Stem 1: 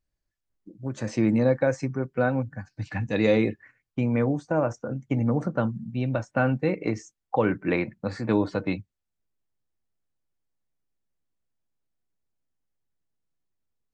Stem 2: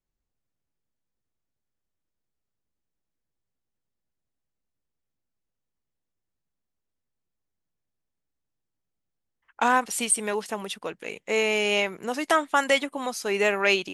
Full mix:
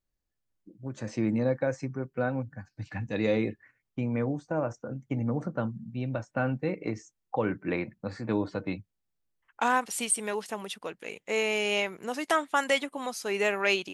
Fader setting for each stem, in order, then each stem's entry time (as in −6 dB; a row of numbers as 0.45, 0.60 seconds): −5.5, −4.0 decibels; 0.00, 0.00 seconds